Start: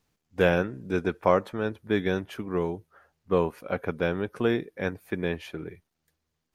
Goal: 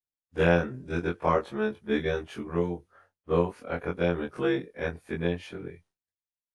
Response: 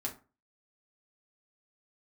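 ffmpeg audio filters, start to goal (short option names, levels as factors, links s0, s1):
-af "afftfilt=real='re':imag='-im':win_size=2048:overlap=0.75,agate=range=0.0224:threshold=0.001:ratio=3:detection=peak,volume=1.41" -ar 24000 -c:a aac -b:a 96k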